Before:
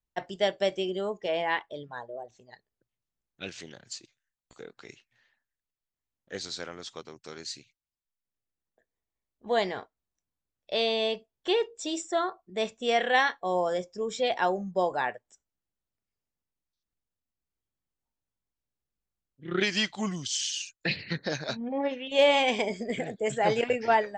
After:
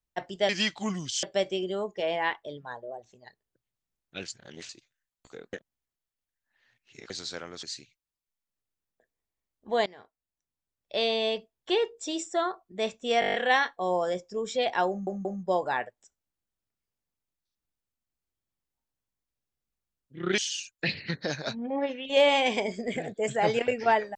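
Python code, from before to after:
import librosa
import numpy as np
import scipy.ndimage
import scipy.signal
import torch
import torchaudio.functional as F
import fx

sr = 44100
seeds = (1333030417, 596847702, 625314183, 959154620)

y = fx.edit(x, sr, fx.reverse_span(start_s=3.54, length_s=0.41),
    fx.reverse_span(start_s=4.79, length_s=1.57),
    fx.cut(start_s=6.89, length_s=0.52),
    fx.fade_in_from(start_s=9.64, length_s=1.09, floor_db=-20.0),
    fx.stutter(start_s=12.98, slice_s=0.02, count=8),
    fx.stutter(start_s=14.53, slice_s=0.18, count=3),
    fx.move(start_s=19.66, length_s=0.74, to_s=0.49), tone=tone)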